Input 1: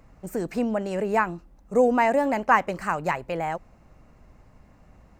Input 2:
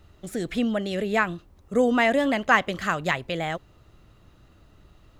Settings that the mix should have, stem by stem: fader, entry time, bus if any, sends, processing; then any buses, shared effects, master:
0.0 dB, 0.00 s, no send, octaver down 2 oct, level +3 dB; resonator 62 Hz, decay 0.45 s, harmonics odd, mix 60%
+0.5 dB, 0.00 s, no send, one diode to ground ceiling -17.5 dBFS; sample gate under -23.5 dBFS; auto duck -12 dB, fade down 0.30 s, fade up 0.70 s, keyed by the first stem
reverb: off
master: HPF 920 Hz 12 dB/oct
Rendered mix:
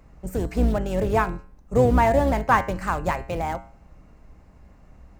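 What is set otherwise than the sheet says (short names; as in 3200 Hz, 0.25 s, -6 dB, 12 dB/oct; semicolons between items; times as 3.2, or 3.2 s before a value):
stem 1 0.0 dB -> +6.5 dB; master: missing HPF 920 Hz 12 dB/oct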